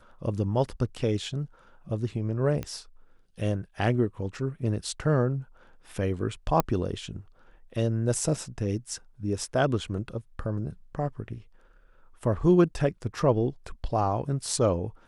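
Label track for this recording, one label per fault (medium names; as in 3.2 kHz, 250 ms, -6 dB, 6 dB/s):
2.630000	2.630000	pop -19 dBFS
6.600000	6.600000	pop -9 dBFS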